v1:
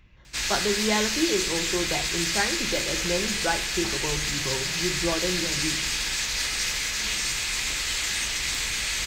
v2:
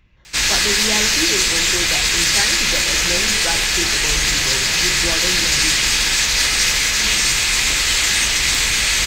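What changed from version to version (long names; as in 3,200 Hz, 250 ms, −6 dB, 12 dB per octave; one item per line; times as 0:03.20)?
background +11.0 dB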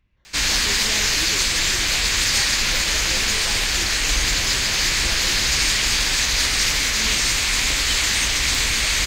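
speech −11.0 dB
reverb: off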